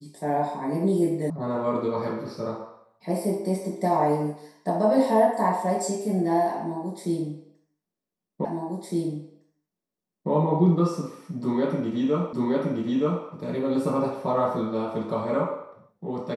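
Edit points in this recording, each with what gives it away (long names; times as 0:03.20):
0:01.30: cut off before it has died away
0:08.45: the same again, the last 1.86 s
0:12.33: the same again, the last 0.92 s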